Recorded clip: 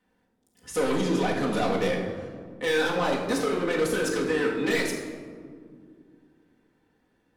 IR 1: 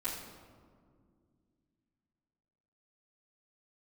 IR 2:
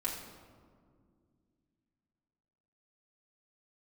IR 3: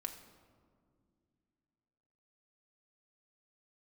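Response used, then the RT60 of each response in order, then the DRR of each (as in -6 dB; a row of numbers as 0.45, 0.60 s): 2; 2.1, 2.1, 2.2 s; -12.5, -5.0, 4.0 dB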